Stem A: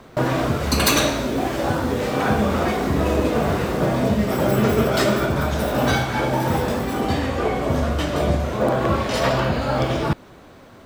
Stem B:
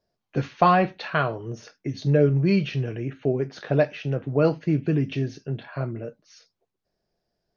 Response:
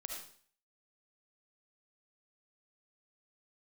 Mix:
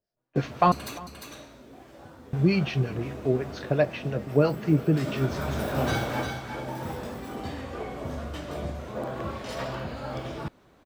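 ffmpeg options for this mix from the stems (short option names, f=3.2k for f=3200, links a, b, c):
-filter_complex "[0:a]volume=-8.5dB,afade=t=in:st=4.96:d=0.55:silence=0.237137,asplit=2[a][b];[b]volume=-5dB[c];[1:a]acrossover=split=790[d][e];[d]aeval=exprs='val(0)*(1-0.7/2+0.7/2*cos(2*PI*5.7*n/s))':c=same[f];[e]aeval=exprs='val(0)*(1-0.7/2-0.7/2*cos(2*PI*5.7*n/s))':c=same[g];[f][g]amix=inputs=2:normalize=0,agate=range=-10dB:threshold=-45dB:ratio=16:detection=peak,volume=2dB,asplit=3[h][i][j];[h]atrim=end=0.72,asetpts=PTS-STARTPTS,afade=t=out:st=0.716:d=0.004:c=hsin[k];[i]atrim=start=0.72:end=2.33,asetpts=PTS-STARTPTS,volume=0[l];[j]atrim=start=2.33,asetpts=PTS-STARTPTS,afade=t=in:d=0.004:c=hsin[m];[k][l][m]concat=n=3:v=0:a=1,asplit=3[n][o][p];[o]volume=-21.5dB[q];[p]apad=whole_len=478493[r];[a][r]sidechaingate=range=-44dB:threshold=-52dB:ratio=16:detection=peak[s];[c][q]amix=inputs=2:normalize=0,aecho=0:1:351:1[t];[s][n][t]amix=inputs=3:normalize=0"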